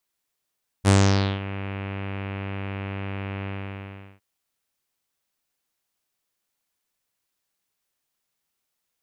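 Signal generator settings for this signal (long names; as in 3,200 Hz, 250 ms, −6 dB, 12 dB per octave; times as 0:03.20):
subtractive voice saw G2 24 dB per octave, low-pass 2,600 Hz, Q 2.7, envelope 2 octaves, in 0.60 s, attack 42 ms, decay 0.51 s, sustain −16.5 dB, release 0.74 s, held 2.62 s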